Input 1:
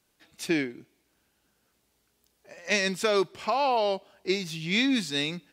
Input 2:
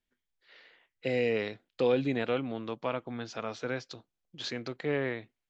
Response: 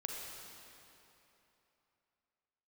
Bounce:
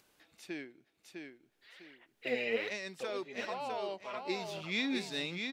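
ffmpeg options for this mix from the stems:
-filter_complex "[0:a]volume=-7.5dB,afade=t=in:st=3.73:d=0.73:silence=0.446684,asplit=3[a][b][c];[b]volume=-5dB[d];[1:a]tiltshelf=f=810:g=-4,aphaser=in_gain=1:out_gain=1:delay=5:decay=0.72:speed=1.2:type=sinusoidal,adelay=1200,volume=-6dB[e];[c]apad=whole_len=295374[f];[e][f]sidechaincompress=threshold=-53dB:ratio=5:attack=27:release=251[g];[d]aecho=0:1:654|1308|1962|2616:1|0.3|0.09|0.027[h];[a][g][h]amix=inputs=3:normalize=0,bass=f=250:g=-6,treble=f=4k:g=-4,acompressor=mode=upward:threshold=-54dB:ratio=2.5"

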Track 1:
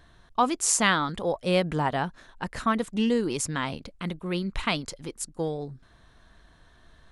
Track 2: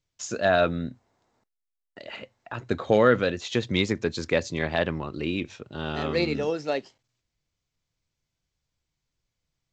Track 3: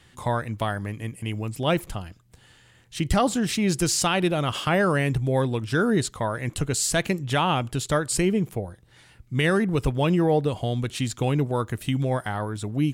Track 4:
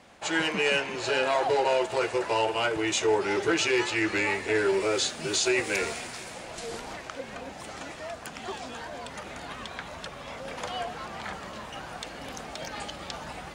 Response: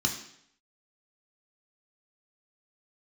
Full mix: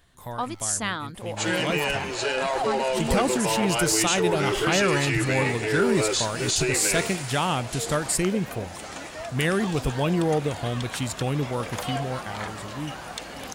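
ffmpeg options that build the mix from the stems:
-filter_complex "[0:a]volume=-7dB[a];[1:a]acompressor=threshold=-30dB:ratio=4,aeval=exprs='abs(val(0))':c=same,volume=-18.5dB[b];[2:a]dynaudnorm=f=380:g=9:m=10dB,volume=-11dB[c];[3:a]alimiter=limit=-19.5dB:level=0:latency=1:release=17,adelay=1150,volume=2dB[d];[a][b][c][d]amix=inputs=4:normalize=0,highshelf=f=8.3k:g=9"

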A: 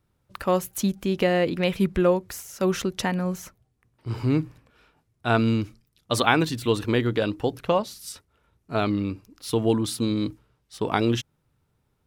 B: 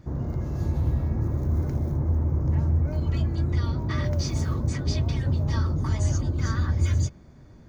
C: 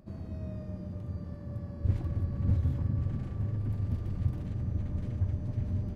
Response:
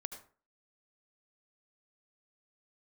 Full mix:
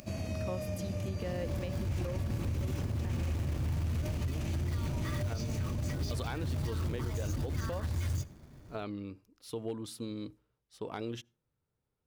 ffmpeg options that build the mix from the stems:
-filter_complex "[0:a]equalizer=f=500:w=2.4:g=5,asoftclip=type=hard:threshold=-9dB,volume=-15dB,asplit=3[a][b][c];[b]volume=-22.5dB[d];[1:a]acrusher=bits=4:mode=log:mix=0:aa=0.000001,adelay=1150,volume=-5dB,asplit=2[e][f];[f]volume=-16dB[g];[2:a]equalizer=f=100:t=o:w=0.67:g=6,equalizer=f=250:t=o:w=0.67:g=5,equalizer=f=630:t=o:w=0.67:g=10,equalizer=f=2.5k:t=o:w=0.67:g=12,equalizer=f=6.3k:t=o:w=0.67:g=8,crystalizer=i=9:c=0,volume=-1dB,asplit=2[h][i];[i]volume=-12.5dB[j];[c]apad=whole_len=389618[k];[e][k]sidechaincompress=threshold=-39dB:ratio=8:attack=41:release=233[l];[a][h]amix=inputs=2:normalize=0,acompressor=threshold=-35dB:ratio=2.5,volume=0dB[m];[3:a]atrim=start_sample=2205[n];[d][g][j]amix=inputs=3:normalize=0[o];[o][n]afir=irnorm=-1:irlink=0[p];[l][m][p]amix=inputs=3:normalize=0,alimiter=level_in=2.5dB:limit=-24dB:level=0:latency=1:release=53,volume=-2.5dB"

